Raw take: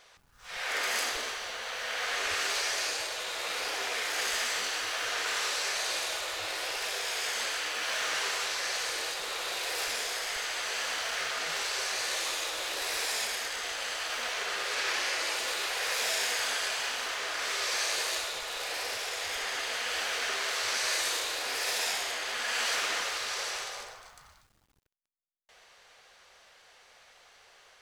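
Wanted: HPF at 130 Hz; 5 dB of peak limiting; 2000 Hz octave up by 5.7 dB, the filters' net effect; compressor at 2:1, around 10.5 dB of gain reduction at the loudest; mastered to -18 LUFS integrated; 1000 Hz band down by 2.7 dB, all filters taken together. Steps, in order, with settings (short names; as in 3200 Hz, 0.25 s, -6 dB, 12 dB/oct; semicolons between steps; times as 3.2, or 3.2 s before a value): HPF 130 Hz; bell 1000 Hz -7.5 dB; bell 2000 Hz +9 dB; compressor 2:1, threshold -44 dBFS; gain +20 dB; limiter -10 dBFS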